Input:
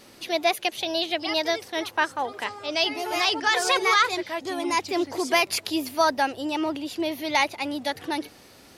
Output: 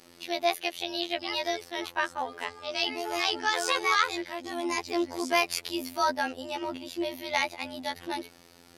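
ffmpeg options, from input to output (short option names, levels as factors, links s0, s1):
-af "afftfilt=real='hypot(re,im)*cos(PI*b)':imag='0':win_size=2048:overlap=0.75,volume=0.841"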